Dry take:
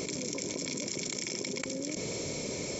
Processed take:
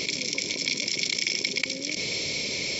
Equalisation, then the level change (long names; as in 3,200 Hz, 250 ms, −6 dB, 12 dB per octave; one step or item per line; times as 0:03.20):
flat-topped bell 3,300 Hz +15 dB
−1.0 dB